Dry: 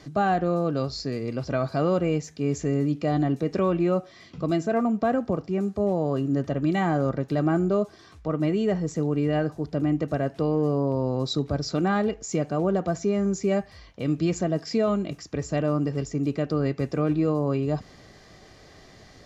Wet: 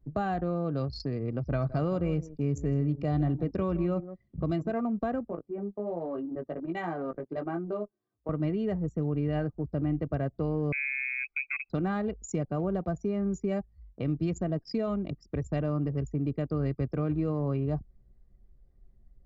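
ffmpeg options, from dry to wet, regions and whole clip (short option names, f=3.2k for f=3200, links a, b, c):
-filter_complex "[0:a]asettb=1/sr,asplit=3[a][b][c];[a]atrim=end=1.464[d];[b]atrim=start=1.46:end=4.71,asetpts=PTS-STARTPTS,afade=t=in:d=0.004:c=qsin,afade=t=out:st=3.246:d=0.004:c=qsin,equalizer=f=61:t=o:w=2.3:g=4,aecho=1:1:162:0.188,atrim=end_sample=143325[e];[c]atrim=start=4.706[f];[d][e]acrossfade=d=0.004:c1=hsin:c2=qsin[g];[g][f]acrossfade=d=0.004:c1=qsin:c2=hsin,asettb=1/sr,asplit=3[h][i][j];[h]atrim=end=5.284[k];[i]atrim=start=5.28:end=8.29,asetpts=PTS-STARTPTS,afade=t=in:d=0.004:c=qsin,afade=t=out:st=3.006:d=0.004:c=qsin,highpass=290,flanger=delay=17.5:depth=2.1:speed=1.3[l];[j]atrim=start=8.286[m];[k][l]acrossfade=d=0.004:c1=hsin:c2=qsin[n];[n][m]acrossfade=d=0.004:c1=qsin:c2=hsin,asettb=1/sr,asplit=3[o][p][q];[o]atrim=end=10.724[r];[p]atrim=start=10.72:end=11.7,asetpts=PTS-STARTPTS,afade=t=in:d=0.004:c=qsin,afade=t=out:st=0.976:d=0.004:c=qsin,equalizer=f=110:w=2.6:g=-13,lowpass=f=2.3k:t=q:w=0.5098,lowpass=f=2.3k:t=q:w=0.6013,lowpass=f=2.3k:t=q:w=0.9,lowpass=f=2.3k:t=q:w=2.563,afreqshift=-2700[s];[q]atrim=start=11.696[t];[r][s]acrossfade=d=0.004:c1=hsin:c2=qsin[u];[u][t]acrossfade=d=0.004:c1=qsin:c2=hsin,anlmdn=15.8,lowshelf=f=81:g=9,acrossover=split=120[v][w];[w]acompressor=threshold=-34dB:ratio=2[x];[v][x]amix=inputs=2:normalize=0"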